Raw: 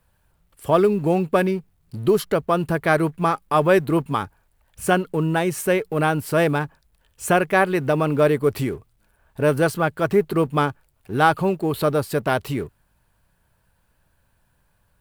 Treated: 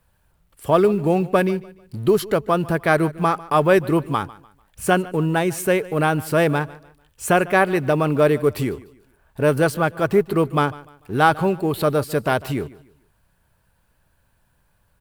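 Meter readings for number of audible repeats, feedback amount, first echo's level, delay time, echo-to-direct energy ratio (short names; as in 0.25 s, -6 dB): 2, 33%, -20.0 dB, 0.148 s, -19.5 dB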